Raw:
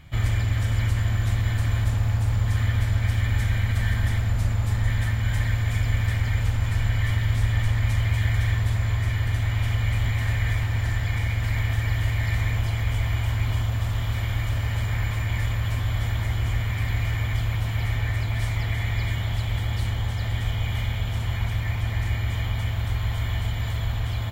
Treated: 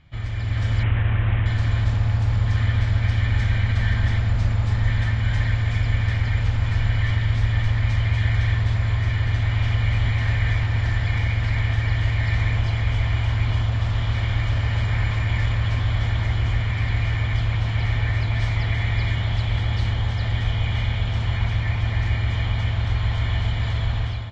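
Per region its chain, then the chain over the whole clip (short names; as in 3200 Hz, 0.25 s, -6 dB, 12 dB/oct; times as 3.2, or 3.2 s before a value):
0.83–1.46 delta modulation 16 kbps, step -31 dBFS + Doppler distortion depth 0.11 ms
whole clip: LPF 5600 Hz 24 dB/oct; AGC gain up to 10.5 dB; gain -6.5 dB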